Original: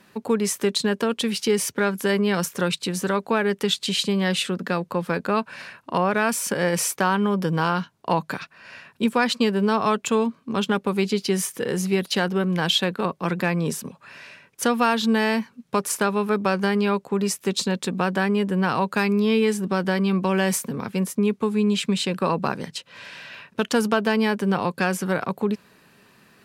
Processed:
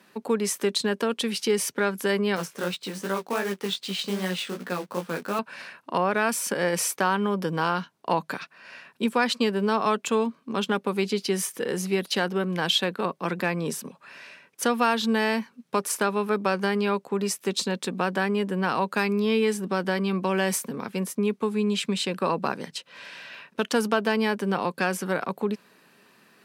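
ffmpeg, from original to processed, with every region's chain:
-filter_complex "[0:a]asettb=1/sr,asplit=3[a][b][c];[a]atrim=end=2.364[d];[b]atrim=start=2.36:end=5.39,asetpts=PTS-STARTPTS,afade=t=in:d=0.004:c=qsin,afade=t=out:st=3.026:d=0.004:c=qsin,highshelf=f=7.9k:g=-11,acrusher=bits=3:mode=log:mix=0:aa=0.000001,flanger=delay=15.5:depth=5.5:speed=2.6[e];[c]atrim=start=5.386[f];[d][e]acrossfade=d=0.004:c1=hsin:c2=qsin[g];[g][f]acrossfade=d=0.004:c1=qsin:c2=hsin,highpass=200,bandreject=f=7k:w=27,volume=-2dB"

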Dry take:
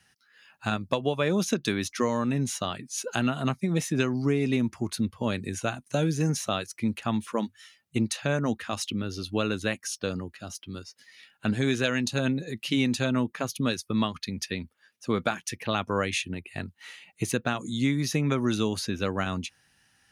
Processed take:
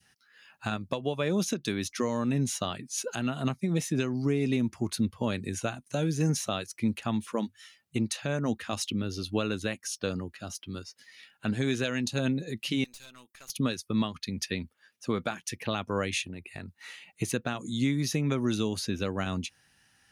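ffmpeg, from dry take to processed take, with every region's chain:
-filter_complex "[0:a]asettb=1/sr,asplit=3[a][b][c];[a]atrim=end=12.844[d];[b]atrim=start=12.84:end=13.5,asetpts=PTS-STARTPTS,afade=t=in:d=0.004:c=qsin,afade=t=out:st=0.656:d=0.004:c=qsin,aderivative,aeval=exprs='(tanh(126*val(0)+0.6)-tanh(0.6))/126':c=same[e];[c]atrim=start=13.496[f];[d][e]acrossfade=d=0.004:c1=hsin:c2=qsin[g];[g][f]acrossfade=d=0.004:c1=qsin:c2=hsin,asettb=1/sr,asplit=3[h][i][j];[h]atrim=end=16.254[k];[i]atrim=start=16.25:end=16.9,asetpts=PTS-STARTPTS,afade=t=in:d=0.004:c=qsin,afade=t=out:st=0.646:d=0.004:c=qsin,bandreject=f=3.1k:w=7.1,acompressor=threshold=-36dB:ratio=4:attack=3.2:release=140:knee=1:detection=peak[l];[j]atrim=start=16.896[m];[k][l]acrossfade=d=0.004:c1=hsin:c2=qsin[n];[n][m]acrossfade=d=0.004:c1=qsin:c2=hsin,adynamicequalizer=threshold=0.00631:dfrequency=1300:dqfactor=0.8:tfrequency=1300:tqfactor=0.8:attack=5:release=100:ratio=0.375:range=2:mode=cutabove:tftype=bell,alimiter=limit=-17dB:level=0:latency=1:release=364"

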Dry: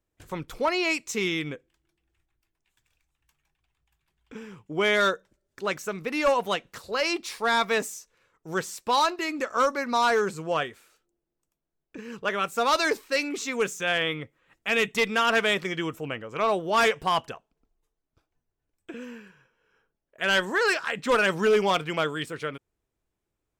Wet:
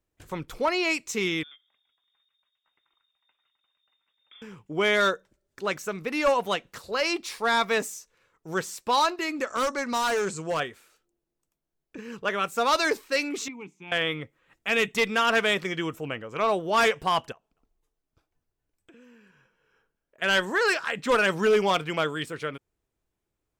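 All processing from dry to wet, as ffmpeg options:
-filter_complex "[0:a]asettb=1/sr,asplit=3[a][b][c];[a]atrim=end=1.434[d];[b]atrim=start=1.43:end=4.42,asetpts=PTS-STARTPTS,afade=t=in:d=0.004:c=qsin,afade=t=out:st=2.986:d=0.004:c=qsin,acompressor=threshold=-52dB:ratio=3:attack=3.2:release=140:knee=1:detection=peak,lowpass=f=3.1k:t=q:w=0.5098,lowpass=f=3.1k:t=q:w=0.6013,lowpass=f=3.1k:t=q:w=0.9,lowpass=f=3.1k:t=q:w=2.563,afreqshift=-3700[e];[c]atrim=start=4.416[f];[d][e]acrossfade=d=0.004:c1=hsin:c2=qsin[g];[g][f]acrossfade=d=0.004:c1=qsin:c2=hsin,asettb=1/sr,asplit=3[h][i][j];[h]atrim=end=9.474[k];[i]atrim=start=9.47:end=10.6,asetpts=PTS-STARTPTS,afade=t=in:d=0.004:c=qsin,afade=t=out:st=1.126:d=0.004:c=qsin,lowpass=f=7.7k:t=q:w=2.6,asoftclip=type=hard:threshold=-22.5dB[l];[j]atrim=start=10.596[m];[k][l]acrossfade=d=0.004:c1=hsin:c2=qsin[n];[n][m]acrossfade=d=0.004:c1=qsin:c2=hsin,asettb=1/sr,asplit=3[o][p][q];[o]atrim=end=13.484[r];[p]atrim=start=13.48:end=13.92,asetpts=PTS-STARTPTS,afade=t=in:d=0.004:c=qsin,afade=t=out:st=0.436:d=0.004:c=qsin,asplit=3[s][t][u];[s]bandpass=f=300:t=q:w=8,volume=0dB[v];[t]bandpass=f=870:t=q:w=8,volume=-6dB[w];[u]bandpass=f=2.24k:t=q:w=8,volume=-9dB[x];[v][w][x]amix=inputs=3:normalize=0,equalizer=f=160:w=2.3:g=14[y];[q]atrim=start=13.916[z];[r][y]acrossfade=d=0.004:c1=hsin:c2=qsin[aa];[aa][z]acrossfade=d=0.004:c1=qsin:c2=hsin,asettb=1/sr,asplit=3[ab][ac][ad];[ab]atrim=end=17.324[ae];[ac]atrim=start=17.32:end=20.22,asetpts=PTS-STARTPTS,afade=t=in:d=0.004:c=qsin,afade=t=out:st=2.896:d=0.004:c=qsin,acompressor=threshold=-57dB:ratio=2.5:attack=3.2:release=140:knee=1:detection=peak,aecho=1:1:247:0.0708,atrim=end_sample=127890[af];[ad]atrim=start=20.216[ag];[ae][af]acrossfade=d=0.004:c1=hsin:c2=qsin[ah];[ah][ag]acrossfade=d=0.004:c1=qsin:c2=hsin"

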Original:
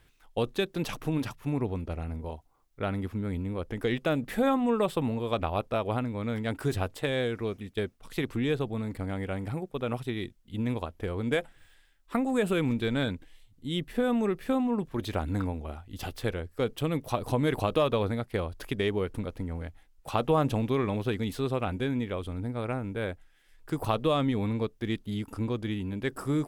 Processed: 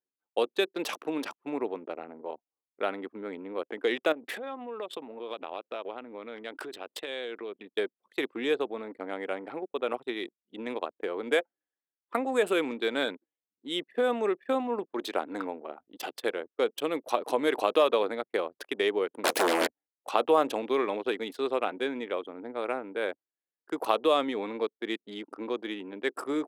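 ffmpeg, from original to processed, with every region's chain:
-filter_complex "[0:a]asettb=1/sr,asplit=3[a][b][c];[a]atrim=end=4.124[d];[b]atrim=start=4.12:end=7.68,asetpts=PTS-STARTPTS,afade=t=in:d=0.004:c=qsin,afade=t=out:st=3.556:d=0.004:c=qsin,adynamicequalizer=threshold=0.00398:dfrequency=3200:dqfactor=1.1:tfrequency=3200:tqfactor=1.1:attack=5:release=100:ratio=0.375:range=3:mode=boostabove:tftype=bell,acompressor=threshold=-33dB:ratio=20:attack=3.2:release=140:knee=1:detection=peak[e];[c]atrim=start=7.676[f];[d][e]acrossfade=d=0.004:c1=hsin:c2=qsin[g];[g][f]acrossfade=d=0.004:c1=qsin:c2=hsin,asettb=1/sr,asplit=3[h][i][j];[h]atrim=end=19.244[k];[i]atrim=start=19.24:end=19.67,asetpts=PTS-STARTPTS,afade=t=in:d=0.004:c=qsin,afade=t=out:st=0.426:d=0.004:c=qsin,highshelf=f=3k:g=11,aeval=exprs='0.0794*sin(PI/2*7.08*val(0)/0.0794)':c=same[l];[j]atrim=start=19.666[m];[k][l]acrossfade=d=0.004:c1=hsin:c2=qsin[n];[n][m]acrossfade=d=0.004:c1=qsin:c2=hsin,anlmdn=0.398,highpass=f=330:w=0.5412,highpass=f=330:w=1.3066,volume=3dB"

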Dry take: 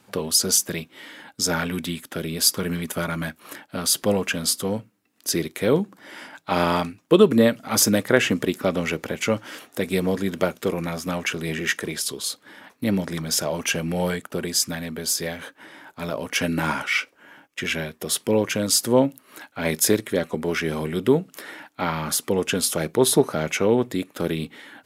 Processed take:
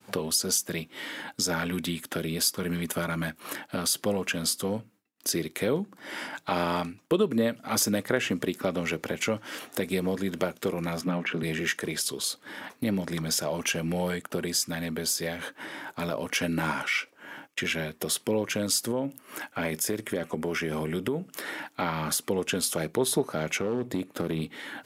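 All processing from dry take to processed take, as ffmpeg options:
-filter_complex "[0:a]asettb=1/sr,asplit=3[a][b][c];[a]atrim=end=11.014[d];[b]atrim=start=11.01:end=11.43,asetpts=PTS-STARTPTS,afade=t=in:d=0.004:c=qsin,afade=t=out:st=0.416:d=0.004:c=qsin,acrossover=split=4000[e][f];[f]acompressor=threshold=-42dB:ratio=4:attack=1:release=60[g];[e][g]amix=inputs=2:normalize=0,highpass=f=170:w=0.5412,highpass=f=170:w=1.3066,bass=f=250:g=9,treble=f=4k:g=-12[h];[c]atrim=start=11.426[i];[d][h]acrossfade=d=0.004:c1=hsin:c2=qsin[j];[j][i]acrossfade=d=0.004:c1=qsin:c2=hsin,asettb=1/sr,asplit=3[k][l][m];[k]atrim=end=18.914[n];[l]atrim=start=18.91:end=21.33,asetpts=PTS-STARTPTS,afade=t=in:d=0.004:c=qsin,afade=t=out:st=2.416:d=0.004:c=qsin,equalizer=f=4k:w=7.4:g=-10.5,acompressor=threshold=-22dB:ratio=2.5:attack=3.2:release=140:knee=1:detection=peak[o];[m]atrim=start=21.326[p];[n][o]acrossfade=d=0.004:c1=hsin:c2=qsin[q];[q][p]acrossfade=d=0.004:c1=qsin:c2=hsin,asettb=1/sr,asplit=3[r][s][t];[r]atrim=end=23.584[u];[s]atrim=start=23.58:end=24.42,asetpts=PTS-STARTPTS,afade=t=in:d=0.004:c=qsin,afade=t=out:st=0.836:d=0.004:c=qsin,tiltshelf=f=750:g=3.5,acompressor=threshold=-20dB:ratio=3:attack=3.2:release=140:knee=1:detection=peak,asoftclip=type=hard:threshold=-18.5dB[v];[t]atrim=start=24.416[w];[u][v]acrossfade=d=0.004:c1=hsin:c2=qsin[x];[x][w]acrossfade=d=0.004:c1=qsin:c2=hsin,highpass=79,acompressor=threshold=-39dB:ratio=2,agate=range=-33dB:threshold=-55dB:ratio=3:detection=peak,volume=5.5dB"

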